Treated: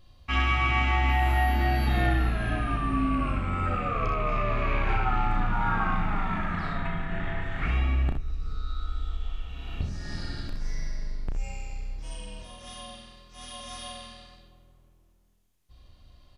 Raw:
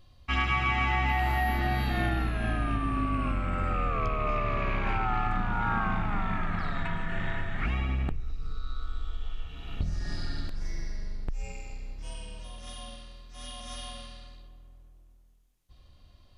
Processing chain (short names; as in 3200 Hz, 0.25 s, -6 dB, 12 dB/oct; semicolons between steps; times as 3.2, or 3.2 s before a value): 6.73–7.42 high shelf 4700 Hz -10.5 dB; early reflections 34 ms -5.5 dB, 64 ms -7.5 dB, 78 ms -11.5 dB